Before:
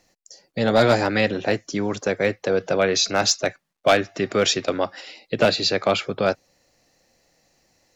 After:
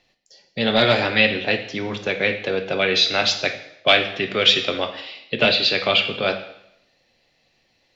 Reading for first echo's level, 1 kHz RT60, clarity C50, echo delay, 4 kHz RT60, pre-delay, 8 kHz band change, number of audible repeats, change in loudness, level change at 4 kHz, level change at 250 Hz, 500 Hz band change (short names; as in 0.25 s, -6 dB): none, 0.80 s, 10.0 dB, none, 0.75 s, 3 ms, n/a, none, +2.5 dB, +7.0 dB, -2.0 dB, -2.0 dB